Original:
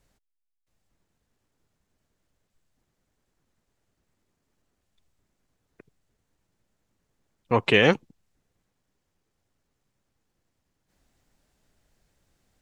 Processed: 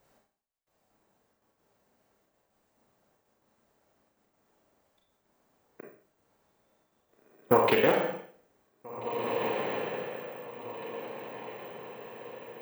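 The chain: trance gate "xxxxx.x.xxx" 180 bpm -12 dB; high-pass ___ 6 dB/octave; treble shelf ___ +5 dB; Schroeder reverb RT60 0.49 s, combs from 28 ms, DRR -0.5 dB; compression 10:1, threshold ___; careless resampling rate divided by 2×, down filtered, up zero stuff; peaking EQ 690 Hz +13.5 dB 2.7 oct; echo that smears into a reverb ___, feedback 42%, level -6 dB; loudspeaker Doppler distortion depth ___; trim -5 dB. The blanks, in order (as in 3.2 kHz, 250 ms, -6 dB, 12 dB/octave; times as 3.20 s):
73 Hz, 6.3 kHz, -24 dBFS, 1808 ms, 0.25 ms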